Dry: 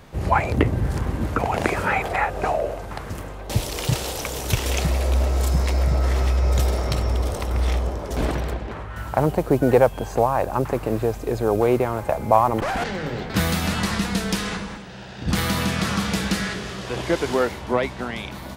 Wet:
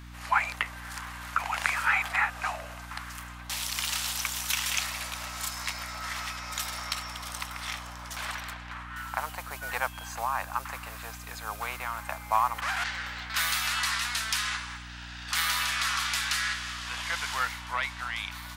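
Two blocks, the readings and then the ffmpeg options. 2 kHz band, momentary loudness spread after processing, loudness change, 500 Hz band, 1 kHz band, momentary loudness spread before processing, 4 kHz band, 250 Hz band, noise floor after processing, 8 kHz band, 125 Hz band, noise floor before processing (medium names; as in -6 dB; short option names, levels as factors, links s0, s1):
0.0 dB, 13 LU, -7.5 dB, -23.5 dB, -6.5 dB, 10 LU, 0.0 dB, -23.0 dB, -43 dBFS, 0.0 dB, -20.5 dB, -35 dBFS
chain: -af "highpass=f=1100:w=0.5412,highpass=f=1100:w=1.3066,aeval=exprs='val(0)+0.00631*(sin(2*PI*60*n/s)+sin(2*PI*2*60*n/s)/2+sin(2*PI*3*60*n/s)/3+sin(2*PI*4*60*n/s)/4+sin(2*PI*5*60*n/s)/5)':c=same"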